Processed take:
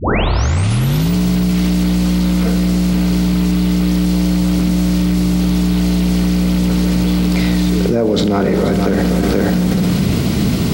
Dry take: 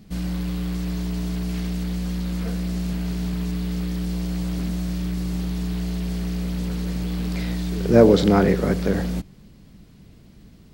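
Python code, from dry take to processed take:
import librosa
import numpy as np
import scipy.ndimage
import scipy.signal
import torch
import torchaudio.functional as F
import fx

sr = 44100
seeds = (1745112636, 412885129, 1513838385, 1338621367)

y = fx.tape_start_head(x, sr, length_s=1.14)
y = scipy.signal.sosfilt(scipy.signal.butter(2, 86.0, 'highpass', fs=sr, output='sos'), y)
y = fx.notch(y, sr, hz=1700.0, q=11.0)
y = y + 10.0 ** (-13.5 / 20.0) * np.pad(y, (int(480 * sr / 1000.0), 0))[:len(y)]
y = fx.rev_schroeder(y, sr, rt60_s=1.7, comb_ms=30, drr_db=13.0)
y = fx.env_flatten(y, sr, amount_pct=100)
y = y * librosa.db_to_amplitude(-5.0)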